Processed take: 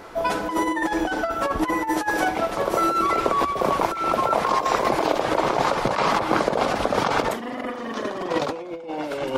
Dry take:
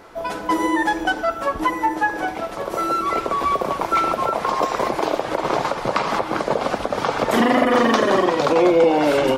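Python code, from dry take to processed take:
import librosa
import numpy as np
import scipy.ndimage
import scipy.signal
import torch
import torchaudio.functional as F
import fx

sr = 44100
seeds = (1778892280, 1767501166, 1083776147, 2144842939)

y = fx.high_shelf(x, sr, hz=3700.0, db=9.5, at=(1.87, 2.28))
y = fx.over_compress(y, sr, threshold_db=-22.0, ratio=-0.5)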